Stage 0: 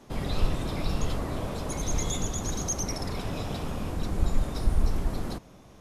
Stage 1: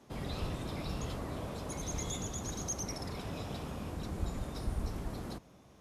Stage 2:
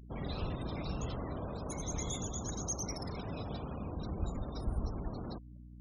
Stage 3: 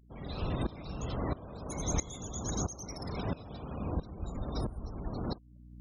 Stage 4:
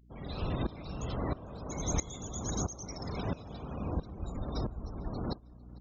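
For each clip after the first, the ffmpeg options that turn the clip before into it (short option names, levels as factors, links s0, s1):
-af "highpass=50,volume=0.447"
-af "afftfilt=real='re*gte(hypot(re,im),0.00562)':imag='im*gte(hypot(re,im),0.00562)':win_size=1024:overlap=0.75,aeval=exprs='val(0)+0.00316*(sin(2*PI*60*n/s)+sin(2*PI*2*60*n/s)/2+sin(2*PI*3*60*n/s)/3+sin(2*PI*4*60*n/s)/4+sin(2*PI*5*60*n/s)/5)':c=same"
-af "aeval=exprs='val(0)*pow(10,-18*if(lt(mod(-1.5*n/s,1),2*abs(-1.5)/1000),1-mod(-1.5*n/s,1)/(2*abs(-1.5)/1000),(mod(-1.5*n/s,1)-2*abs(-1.5)/1000)/(1-2*abs(-1.5)/1000))/20)':c=same,volume=2.66"
-filter_complex "[0:a]asplit=2[s0][s1];[s1]adelay=450,lowpass=f=4300:p=1,volume=0.0708,asplit=2[s2][s3];[s3]adelay=450,lowpass=f=4300:p=1,volume=0.5,asplit=2[s4][s5];[s5]adelay=450,lowpass=f=4300:p=1,volume=0.5[s6];[s0][s2][s4][s6]amix=inputs=4:normalize=0,aresample=16000,aresample=44100"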